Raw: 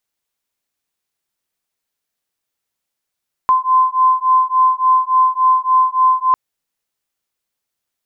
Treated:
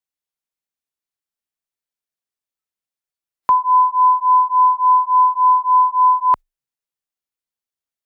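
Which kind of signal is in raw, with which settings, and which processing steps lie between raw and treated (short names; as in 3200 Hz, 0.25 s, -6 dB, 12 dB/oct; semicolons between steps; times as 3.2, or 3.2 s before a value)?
beating tones 1030 Hz, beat 3.5 Hz, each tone -13.5 dBFS 2.85 s
spectral noise reduction 12 dB; frequency shift -24 Hz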